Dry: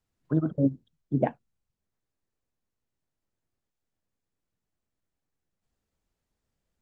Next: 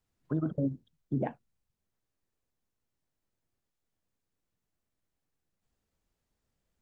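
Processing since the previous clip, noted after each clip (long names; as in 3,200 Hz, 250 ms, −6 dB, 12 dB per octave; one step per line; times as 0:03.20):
brickwall limiter −21.5 dBFS, peak gain reduction 10.5 dB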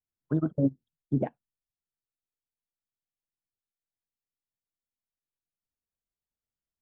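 expander for the loud parts 2.5 to 1, over −43 dBFS
level +7 dB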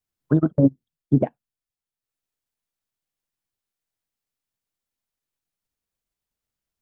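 transient designer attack +3 dB, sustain −6 dB
level +7 dB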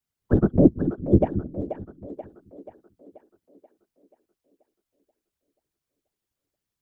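random phases in short frames
echo with a time of its own for lows and highs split 320 Hz, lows 221 ms, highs 483 ms, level −9 dB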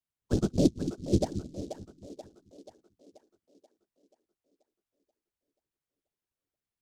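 short delay modulated by noise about 5,000 Hz, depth 0.05 ms
level −8 dB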